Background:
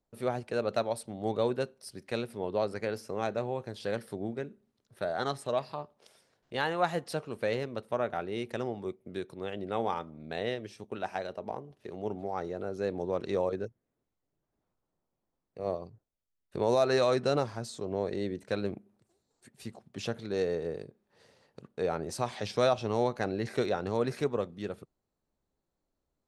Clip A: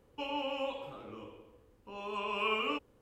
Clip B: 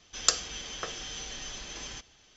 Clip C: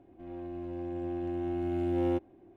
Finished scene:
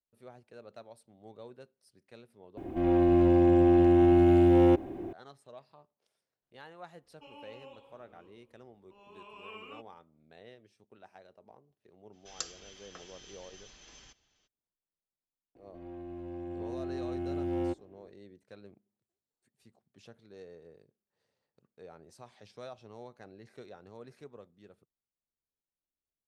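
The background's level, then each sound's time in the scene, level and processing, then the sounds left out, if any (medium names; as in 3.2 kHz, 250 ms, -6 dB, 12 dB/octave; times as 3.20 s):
background -19.5 dB
2.57 s: replace with C -12.5 dB + loudness maximiser +29.5 dB
7.03 s: add A -15 dB
12.12 s: add B -14 dB, fades 0.02 s
15.55 s: add C -3.5 dB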